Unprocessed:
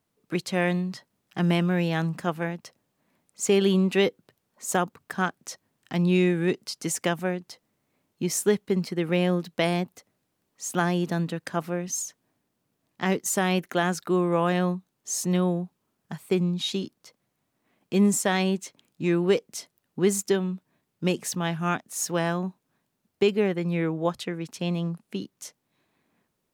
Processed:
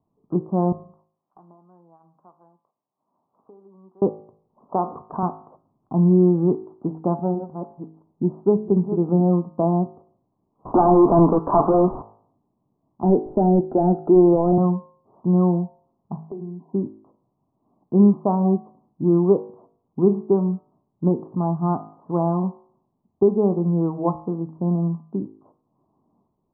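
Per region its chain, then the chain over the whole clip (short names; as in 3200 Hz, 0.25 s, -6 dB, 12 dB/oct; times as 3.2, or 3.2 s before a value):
0.72–4.02 band-pass 8000 Hz, Q 1.7 + three-band squash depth 100%
4.72–5.23 HPF 420 Hz 6 dB/oct + expander -52 dBFS + backwards sustainer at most 57 dB/s
6.66–9.33 reverse delay 0.684 s, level -10 dB + notch 1100 Hz, Q 11
10.65–12.02 HPF 290 Hz + overdrive pedal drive 38 dB, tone 1800 Hz, clips at -10 dBFS
13.03–14.58 HPF 270 Hz + sample leveller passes 3 + fixed phaser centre 2700 Hz, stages 4
16.27–16.73 Chebyshev band-pass 160–1000 Hz, order 5 + comb 2.9 ms, depth 42% + compressor 3:1, threshold -40 dBFS
whole clip: steep low-pass 1100 Hz 72 dB/oct; bell 510 Hz -7.5 dB 0.37 oct; de-hum 53.36 Hz, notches 40; gain +7 dB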